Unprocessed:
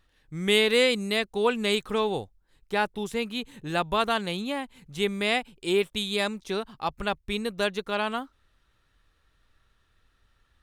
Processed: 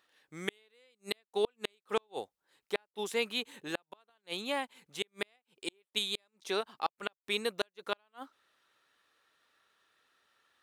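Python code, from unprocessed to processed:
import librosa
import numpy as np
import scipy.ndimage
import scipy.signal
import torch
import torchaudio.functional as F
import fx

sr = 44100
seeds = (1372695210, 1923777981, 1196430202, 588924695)

y = scipy.signal.sosfilt(scipy.signal.butter(2, 410.0, 'highpass', fs=sr, output='sos'), x)
y = fx.gate_flip(y, sr, shuts_db=-17.0, range_db=-42)
y = fx.tremolo_shape(y, sr, shape='saw_up', hz=1.6, depth_pct=30, at=(4.11, 6.75))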